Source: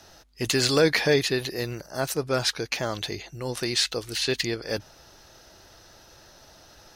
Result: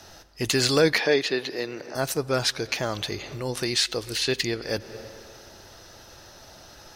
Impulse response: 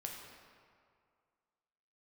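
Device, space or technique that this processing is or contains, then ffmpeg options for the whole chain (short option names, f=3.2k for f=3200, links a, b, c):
ducked reverb: -filter_complex "[0:a]asplit=3[a][b][c];[1:a]atrim=start_sample=2205[d];[b][d]afir=irnorm=-1:irlink=0[e];[c]apad=whole_len=306589[f];[e][f]sidechaincompress=threshold=-38dB:ratio=12:attack=9.2:release=175,volume=-1dB[g];[a][g]amix=inputs=2:normalize=0,asettb=1/sr,asplit=3[h][i][j];[h]atrim=end=0.984[k];[i]atrim=start=0.98:end=1.95,asetpts=PTS-STARTPTS,afade=t=in:d=0.004:c=qsin,afade=t=out:st=0.966:d=0.004:c=qsin,acrossover=split=210 5800:gain=0.112 1 0.178[l][m][n];[l][m][n]amix=inputs=3:normalize=0[o];[j]atrim=start=1.946[p];[k][o]acrossfade=d=0.004:c1=hsin:c2=qsin[q];[q][p]acrossfade=d=0.004:c1=qsin:c2=hsin"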